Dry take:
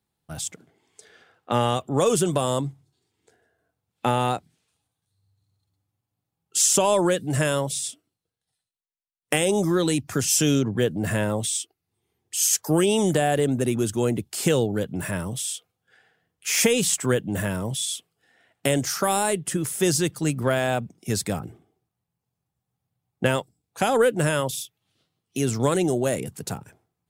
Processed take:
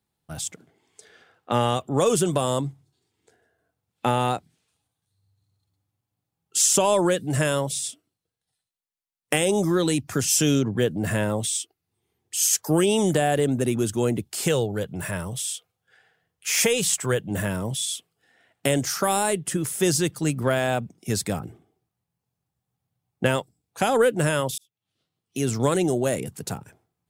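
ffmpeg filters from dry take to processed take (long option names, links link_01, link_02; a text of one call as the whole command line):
ffmpeg -i in.wav -filter_complex "[0:a]asettb=1/sr,asplit=3[link_01][link_02][link_03];[link_01]atrim=end=14.444[link_04];[link_02]atrim=start=14.44:end=17.31,asetpts=PTS-STARTPTS,afade=type=in:duration=0.004:curve=qsin,afade=type=out:start_time=2.866:duration=0.004:curve=qsin,equalizer=frequency=260:width_type=o:width=0.73:gain=-7.5[link_05];[link_03]atrim=start=17.306[link_06];[link_04][link_05]acrossfade=duration=0.004:curve1=hsin:curve2=qsin[link_07];[link_07][link_06]acrossfade=duration=0.004:curve1=qsin:curve2=hsin,asplit=2[link_08][link_09];[link_08]atrim=end=24.58,asetpts=PTS-STARTPTS,afade=type=out:start_time=24.576:duration=0.004:curve=hsin[link_10];[link_09]atrim=start=24.58,asetpts=PTS-STARTPTS,afade=type=in:duration=0.95[link_11];[link_10][link_11]concat=n=2:v=0:a=1" out.wav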